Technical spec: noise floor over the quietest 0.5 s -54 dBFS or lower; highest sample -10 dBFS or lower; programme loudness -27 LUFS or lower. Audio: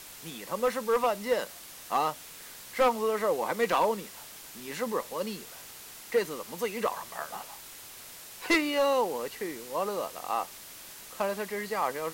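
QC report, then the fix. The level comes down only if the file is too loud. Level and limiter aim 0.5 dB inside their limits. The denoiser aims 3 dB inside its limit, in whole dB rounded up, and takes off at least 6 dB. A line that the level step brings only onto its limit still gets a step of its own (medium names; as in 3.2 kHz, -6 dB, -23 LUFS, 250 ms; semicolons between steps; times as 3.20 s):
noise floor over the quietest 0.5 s -47 dBFS: fail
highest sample -16.5 dBFS: pass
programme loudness -30.5 LUFS: pass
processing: noise reduction 10 dB, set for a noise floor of -47 dBFS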